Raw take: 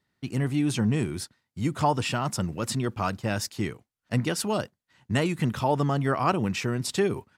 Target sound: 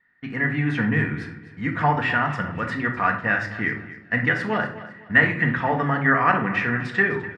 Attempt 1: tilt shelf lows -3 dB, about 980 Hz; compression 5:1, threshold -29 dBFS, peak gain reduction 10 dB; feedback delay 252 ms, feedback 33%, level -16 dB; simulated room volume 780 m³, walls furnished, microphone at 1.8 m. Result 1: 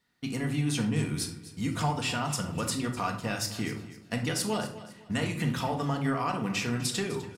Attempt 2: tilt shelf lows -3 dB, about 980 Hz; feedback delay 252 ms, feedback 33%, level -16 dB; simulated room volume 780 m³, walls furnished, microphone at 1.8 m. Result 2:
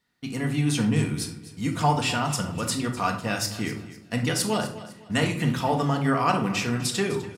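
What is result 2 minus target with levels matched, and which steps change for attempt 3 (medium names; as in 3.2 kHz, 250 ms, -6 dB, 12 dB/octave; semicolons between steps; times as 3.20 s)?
2 kHz band -8.0 dB
add first: resonant low-pass 1.8 kHz, resonance Q 7.6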